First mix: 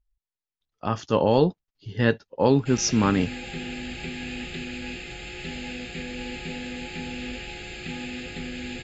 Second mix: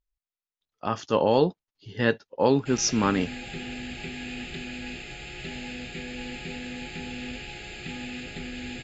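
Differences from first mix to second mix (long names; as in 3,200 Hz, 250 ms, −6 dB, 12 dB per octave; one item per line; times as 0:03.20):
speech: add low-shelf EQ 150 Hz −10.5 dB
reverb: off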